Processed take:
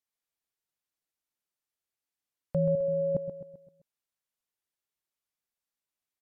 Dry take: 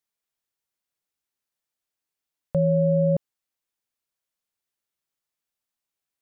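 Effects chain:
0:02.75–0:03.15: parametric band 150 Hz −10 dB 2.8 octaves
repeating echo 130 ms, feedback 47%, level −9.5 dB
level −5 dB
MP3 64 kbit/s 48,000 Hz

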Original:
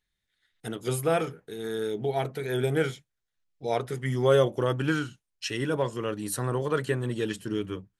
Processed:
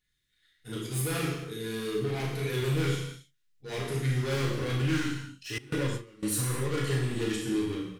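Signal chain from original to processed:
gain into a clipping stage and back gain 29.5 dB
double-tracking delay 37 ms −6 dB
volume swells 111 ms
parametric band 740 Hz −12.5 dB 1.1 octaves
reverb whose tail is shaped and stops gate 310 ms falling, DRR −3 dB
0:05.58–0:06.23: noise gate with hold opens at −19 dBFS

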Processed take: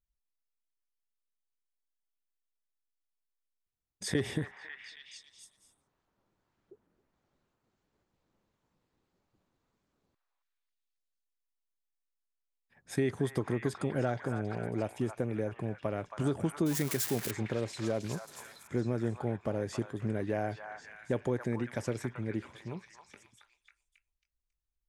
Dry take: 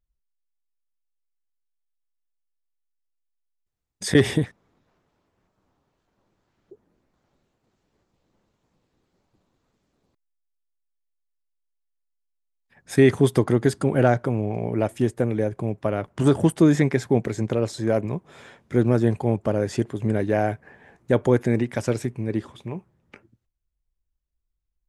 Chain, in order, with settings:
0:16.66–0:17.31: spike at every zero crossing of −12 dBFS
downward compressor 2.5 to 1, threshold −20 dBFS, peak gain reduction 7 dB
echo through a band-pass that steps 273 ms, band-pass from 1,200 Hz, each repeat 0.7 octaves, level −1.5 dB
level −8.5 dB

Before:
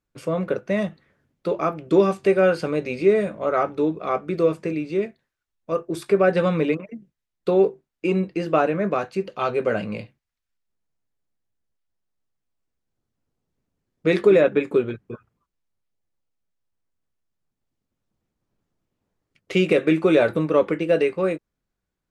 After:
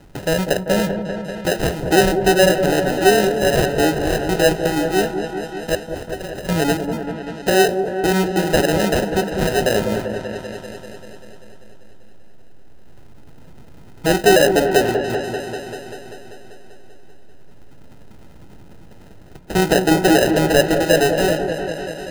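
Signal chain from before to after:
0:05.75–0:06.49: first-order pre-emphasis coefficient 0.97
in parallel at −1.5 dB: brickwall limiter −17.5 dBFS, peak gain reduction 11.5 dB
on the sum: upward compression, threshold −23 dBFS
decimation without filtering 39×
echo whose low-pass opens from repeat to repeat 195 ms, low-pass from 750 Hz, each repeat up 1 octave, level −6 dB
on a send at −20.5 dB: convolution reverb, pre-delay 3 ms

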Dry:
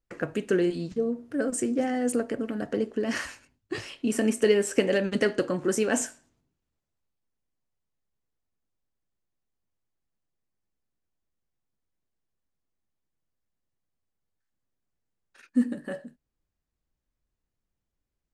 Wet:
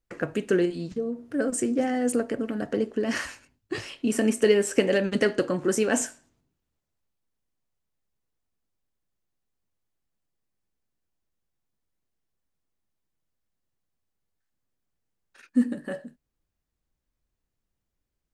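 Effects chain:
0:00.65–0:01.34: downward compressor 2 to 1, threshold −30 dBFS, peak gain reduction 4.5 dB
level +1.5 dB

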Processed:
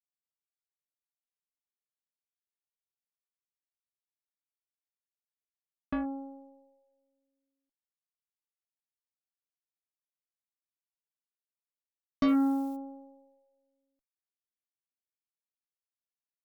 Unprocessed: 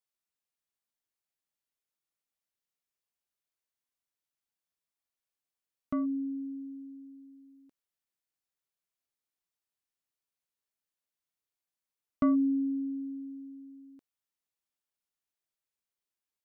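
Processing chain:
0:12.27–0:12.75: background noise blue −63 dBFS
harmonic generator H 3 −37 dB, 4 −25 dB, 7 −17 dB, 8 −33 dB, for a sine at −19 dBFS

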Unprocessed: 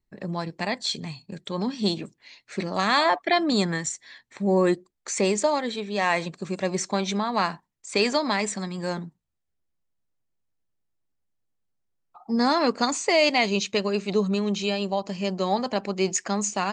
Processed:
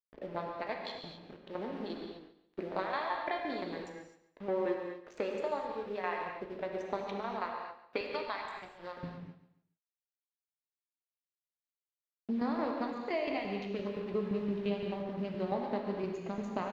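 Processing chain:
adaptive Wiener filter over 41 samples
noise gate with hold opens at −49 dBFS
high-pass filter 460 Hz 12 dB per octave, from 0:08.01 970 Hz, from 0:09.03 140 Hz
downward compressor 4 to 1, threshold −35 dBFS, peak gain reduction 15.5 dB
shaped tremolo saw down 5.8 Hz, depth 75%
bit reduction 9 bits
high-frequency loss of the air 350 metres
repeating echo 141 ms, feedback 33%, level −14.5 dB
reverb whose tail is shaped and stops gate 280 ms flat, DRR 1 dB
level +4.5 dB

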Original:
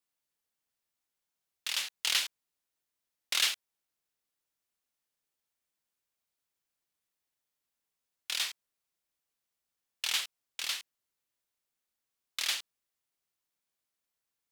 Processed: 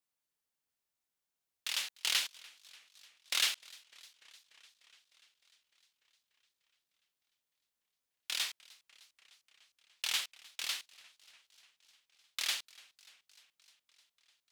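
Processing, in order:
feedback echo with a swinging delay time 299 ms, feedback 74%, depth 209 cents, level −23.5 dB
level −2.5 dB

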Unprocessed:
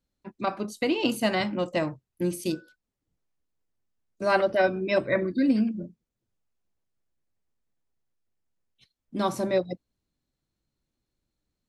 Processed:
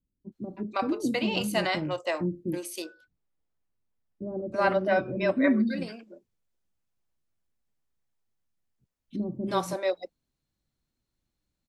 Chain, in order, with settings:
0:02.50–0:05.09: high-shelf EQ 3,600 Hz −10.5 dB
multiband delay without the direct sound lows, highs 320 ms, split 410 Hz

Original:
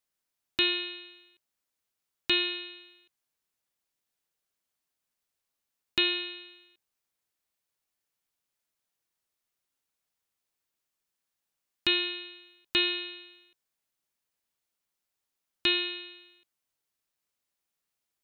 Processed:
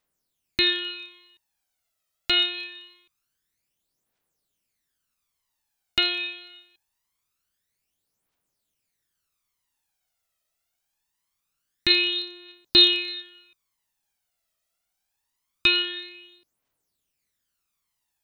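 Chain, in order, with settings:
0:11.90–0:13.22: parametric band 4,000 Hz +9 dB 0.34 octaves
phase shifter 0.24 Hz, delay 1.6 ms, feedback 63%
level +3 dB

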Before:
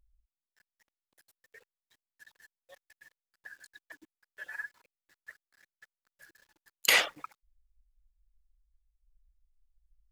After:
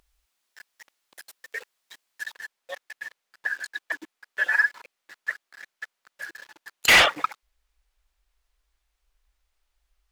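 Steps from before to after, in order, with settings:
mid-hump overdrive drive 31 dB, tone 7,300 Hz, clips at −2 dBFS, from 0:02.33 tone 2,900 Hz
level −2.5 dB

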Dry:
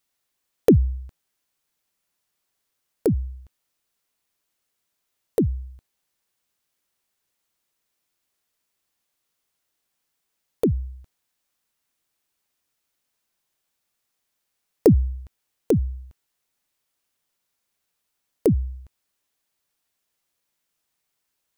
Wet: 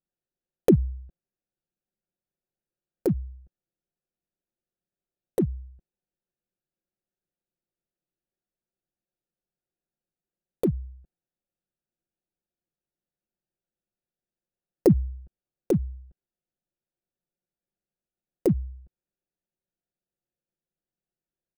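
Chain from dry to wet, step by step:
adaptive Wiener filter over 41 samples
comb filter 5.6 ms, depth 52%
level −4 dB

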